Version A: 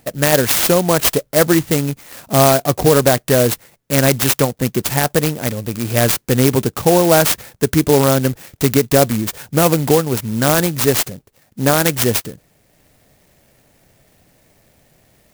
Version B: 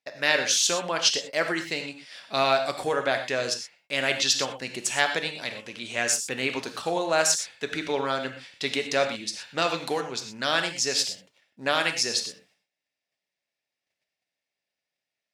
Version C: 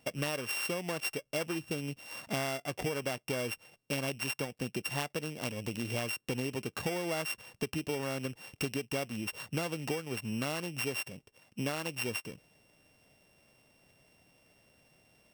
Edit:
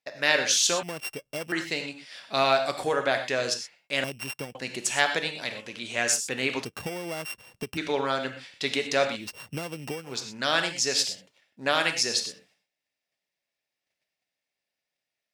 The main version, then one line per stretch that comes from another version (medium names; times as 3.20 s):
B
0.83–1.52 s: from C
4.04–4.55 s: from C
6.65–7.77 s: from C
9.25–10.11 s: from C, crossfade 0.16 s
not used: A